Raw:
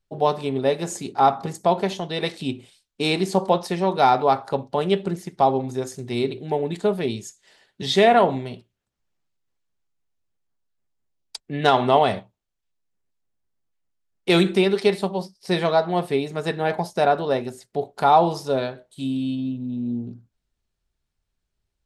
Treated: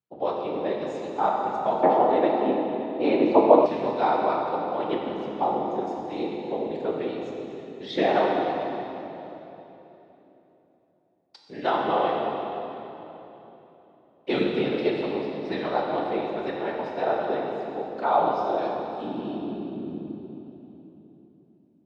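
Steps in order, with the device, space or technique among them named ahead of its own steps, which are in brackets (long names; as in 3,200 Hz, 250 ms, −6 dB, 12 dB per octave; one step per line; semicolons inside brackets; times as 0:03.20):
whispering ghost (random phases in short frames; high-pass filter 240 Hz 12 dB per octave; convolution reverb RT60 3.5 s, pre-delay 12 ms, DRR −1 dB)
0:01.83–0:03.66: drawn EQ curve 170 Hz 0 dB, 250 Hz +10 dB, 770 Hz +11 dB, 11,000 Hz −15 dB
high-frequency loss of the air 220 metres
level −7.5 dB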